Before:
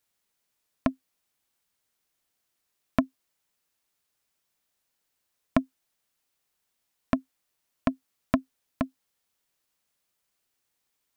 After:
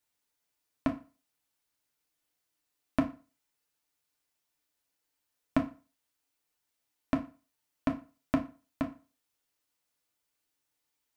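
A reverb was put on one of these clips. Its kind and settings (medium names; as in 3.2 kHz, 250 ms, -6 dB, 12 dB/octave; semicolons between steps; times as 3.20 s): FDN reverb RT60 0.35 s, low-frequency decay 0.95×, high-frequency decay 0.85×, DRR 1.5 dB; trim -6 dB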